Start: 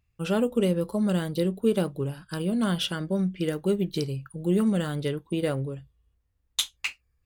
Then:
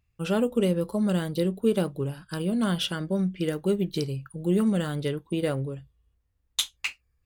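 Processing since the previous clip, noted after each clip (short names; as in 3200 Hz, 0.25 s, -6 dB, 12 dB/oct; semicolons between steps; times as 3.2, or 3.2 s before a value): nothing audible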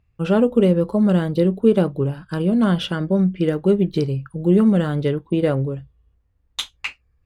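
LPF 1500 Hz 6 dB/oct; gain +8.5 dB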